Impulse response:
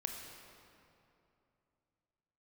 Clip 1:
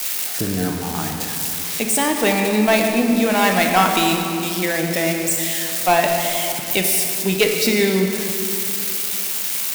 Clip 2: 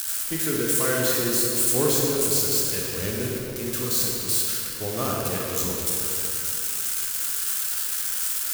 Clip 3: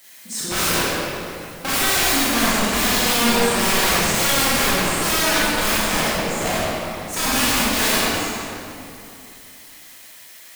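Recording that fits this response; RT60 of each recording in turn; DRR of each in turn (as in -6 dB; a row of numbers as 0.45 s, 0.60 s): 1; 2.8 s, 2.8 s, 2.8 s; 2.5 dB, -3.0 dB, -9.0 dB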